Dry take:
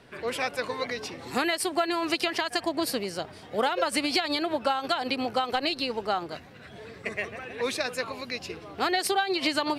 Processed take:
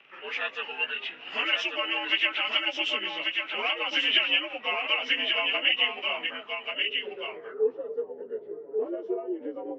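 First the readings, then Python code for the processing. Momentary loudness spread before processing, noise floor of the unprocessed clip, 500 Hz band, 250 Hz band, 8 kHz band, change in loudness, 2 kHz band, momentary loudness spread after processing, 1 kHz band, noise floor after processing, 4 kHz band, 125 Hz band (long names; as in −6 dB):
10 LU, −48 dBFS, −2.5 dB, −9.0 dB, below −15 dB, +1.5 dB, +4.5 dB, 12 LU, −7.5 dB, −47 dBFS, +5.0 dB, below −20 dB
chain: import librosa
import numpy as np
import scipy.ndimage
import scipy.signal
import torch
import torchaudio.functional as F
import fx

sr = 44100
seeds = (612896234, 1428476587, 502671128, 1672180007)

y = fx.partial_stretch(x, sr, pct=87)
y = fx.high_shelf(y, sr, hz=5000.0, db=7.5)
y = fx.filter_sweep_lowpass(y, sr, from_hz=2700.0, to_hz=440.0, start_s=6.13, end_s=6.86, q=7.0)
y = fx.weighting(y, sr, curve='A')
y = y + 10.0 ** (-4.5 / 20.0) * np.pad(y, (int(1139 * sr / 1000.0), 0))[:len(y)]
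y = y * librosa.db_to_amplitude(-5.5)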